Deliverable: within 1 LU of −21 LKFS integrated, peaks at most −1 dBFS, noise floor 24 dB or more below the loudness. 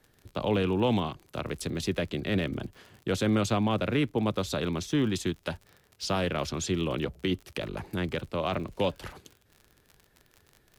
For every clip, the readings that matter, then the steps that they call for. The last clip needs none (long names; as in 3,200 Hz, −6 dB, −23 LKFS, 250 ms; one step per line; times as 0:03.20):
crackle rate 49 per second; integrated loudness −30.0 LKFS; sample peak −16.0 dBFS; target loudness −21.0 LKFS
→ click removal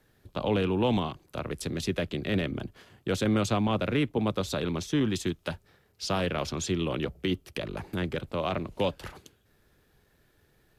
crackle rate 0 per second; integrated loudness −30.0 LKFS; sample peak −16.0 dBFS; target loudness −21.0 LKFS
→ level +9 dB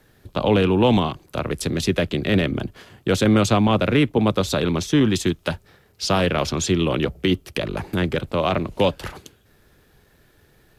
integrated loudness −21.0 LKFS; sample peak −7.0 dBFS; background noise floor −58 dBFS